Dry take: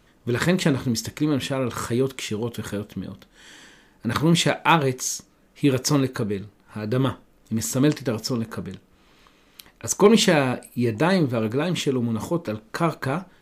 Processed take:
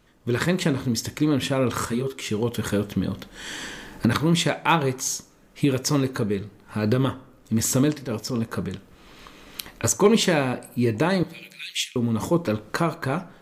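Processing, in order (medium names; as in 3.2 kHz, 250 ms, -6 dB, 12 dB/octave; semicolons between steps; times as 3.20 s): recorder AGC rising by 8.3 dB/s; 7.83–8.52 s: transient shaper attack -8 dB, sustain -3 dB; 11.23–11.96 s: steep high-pass 2.1 kHz 36 dB/octave; plate-style reverb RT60 0.92 s, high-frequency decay 0.55×, DRR 17 dB; 1.85–2.26 s: three-phase chorus; trim -2.5 dB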